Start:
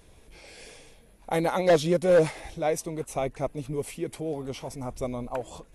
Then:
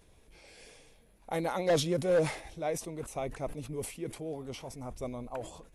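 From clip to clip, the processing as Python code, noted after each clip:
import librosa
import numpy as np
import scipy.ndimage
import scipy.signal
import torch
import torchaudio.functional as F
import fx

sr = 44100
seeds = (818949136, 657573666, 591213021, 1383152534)

y = fx.sustainer(x, sr, db_per_s=110.0)
y = y * librosa.db_to_amplitude(-7.0)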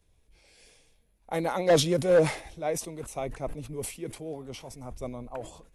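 y = fx.band_widen(x, sr, depth_pct=40)
y = y * librosa.db_to_amplitude(3.0)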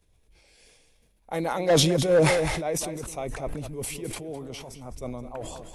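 y = x + 10.0 ** (-13.0 / 20.0) * np.pad(x, (int(208 * sr / 1000.0), 0))[:len(x)]
y = fx.sustainer(y, sr, db_per_s=32.0)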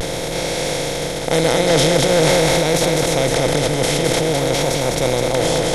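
y = fx.bin_compress(x, sr, power=0.2)
y = fx.vibrato(y, sr, rate_hz=0.47, depth_cents=32.0)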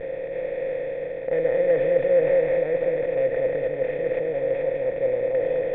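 y = fx.tracing_dist(x, sr, depth_ms=0.22)
y = fx.formant_cascade(y, sr, vowel='e')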